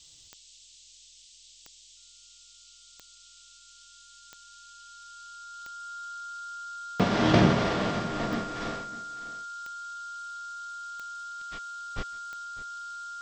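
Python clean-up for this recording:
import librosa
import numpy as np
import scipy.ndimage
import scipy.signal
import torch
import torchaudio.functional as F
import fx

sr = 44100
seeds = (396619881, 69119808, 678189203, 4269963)

y = fx.fix_declick_ar(x, sr, threshold=10.0)
y = fx.notch(y, sr, hz=1400.0, q=30.0)
y = fx.noise_reduce(y, sr, print_start_s=0.95, print_end_s=1.45, reduce_db=23.0)
y = fx.fix_echo_inverse(y, sr, delay_ms=602, level_db=-17.0)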